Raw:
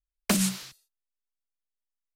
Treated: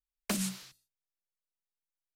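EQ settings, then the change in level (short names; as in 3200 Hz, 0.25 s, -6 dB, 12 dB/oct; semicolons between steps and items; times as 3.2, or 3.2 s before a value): notches 60/120/180/240/300 Hz; -8.0 dB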